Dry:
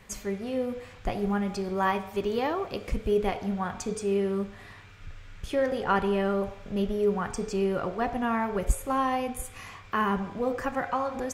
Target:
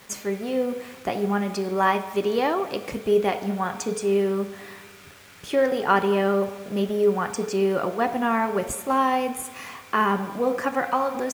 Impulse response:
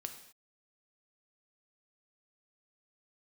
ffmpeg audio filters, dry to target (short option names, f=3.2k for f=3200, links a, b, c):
-filter_complex "[0:a]highpass=200,acrusher=bits=8:mix=0:aa=0.000001,asplit=2[a][b];[b]adelay=218,lowpass=f=2k:p=1,volume=-19dB,asplit=2[c][d];[d]adelay=218,lowpass=f=2k:p=1,volume=0.48,asplit=2[e][f];[f]adelay=218,lowpass=f=2k:p=1,volume=0.48,asplit=2[g][h];[h]adelay=218,lowpass=f=2k:p=1,volume=0.48[i];[c][e][g][i]amix=inputs=4:normalize=0[j];[a][j]amix=inputs=2:normalize=0,volume=5.5dB"